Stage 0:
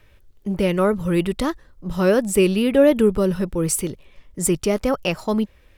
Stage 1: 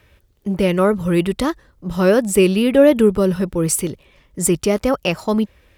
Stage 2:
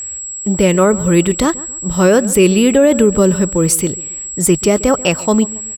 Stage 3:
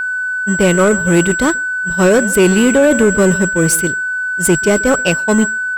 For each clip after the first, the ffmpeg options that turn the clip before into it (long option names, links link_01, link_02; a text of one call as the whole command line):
ffmpeg -i in.wav -af "highpass=42,volume=3dB" out.wav
ffmpeg -i in.wav -filter_complex "[0:a]aeval=exprs='val(0)+0.0398*sin(2*PI*7700*n/s)':channel_layout=same,asplit=2[link_01][link_02];[link_02]adelay=138,lowpass=frequency=2100:poles=1,volume=-19dB,asplit=2[link_03][link_04];[link_04]adelay=138,lowpass=frequency=2100:poles=1,volume=0.37,asplit=2[link_05][link_06];[link_06]adelay=138,lowpass=frequency=2100:poles=1,volume=0.37[link_07];[link_01][link_03][link_05][link_07]amix=inputs=4:normalize=0,alimiter=level_in=6dB:limit=-1dB:release=50:level=0:latency=1,volume=-1dB" out.wav
ffmpeg -i in.wav -af "agate=range=-33dB:threshold=-11dB:ratio=3:detection=peak,aeval=exprs='val(0)+0.112*sin(2*PI*1500*n/s)':channel_layout=same,acontrast=63,volume=-3.5dB" out.wav